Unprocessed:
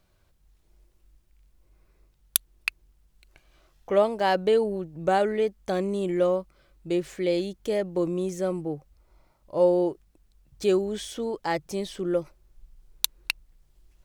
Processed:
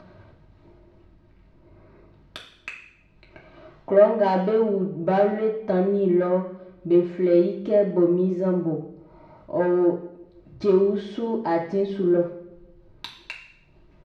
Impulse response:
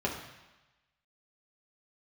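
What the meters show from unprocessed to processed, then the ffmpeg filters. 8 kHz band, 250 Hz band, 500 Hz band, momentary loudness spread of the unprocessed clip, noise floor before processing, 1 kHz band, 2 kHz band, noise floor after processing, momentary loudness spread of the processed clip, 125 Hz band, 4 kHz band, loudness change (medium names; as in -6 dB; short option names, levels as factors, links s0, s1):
under -20 dB, +7.0 dB, +4.0 dB, 10 LU, -66 dBFS, +1.5 dB, -2.0 dB, -56 dBFS, 19 LU, +7.0 dB, no reading, +4.5 dB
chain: -filter_complex "[0:a]lowpass=4700,aemphasis=mode=reproduction:type=75kf,asplit=2[s0][s1];[s1]acompressor=mode=upward:threshold=0.0501:ratio=2.5,volume=0.841[s2];[s0][s2]amix=inputs=2:normalize=0,asoftclip=type=tanh:threshold=0.251,asplit=2[s3][s4];[s4]adelay=167,lowpass=f=950:p=1,volume=0.0891,asplit=2[s5][s6];[s6]adelay=167,lowpass=f=950:p=1,volume=0.53,asplit=2[s7][s8];[s8]adelay=167,lowpass=f=950:p=1,volume=0.53,asplit=2[s9][s10];[s10]adelay=167,lowpass=f=950:p=1,volume=0.53[s11];[s3][s5][s7][s9][s11]amix=inputs=5:normalize=0[s12];[1:a]atrim=start_sample=2205,asetrate=70560,aresample=44100[s13];[s12][s13]afir=irnorm=-1:irlink=0,volume=0.473"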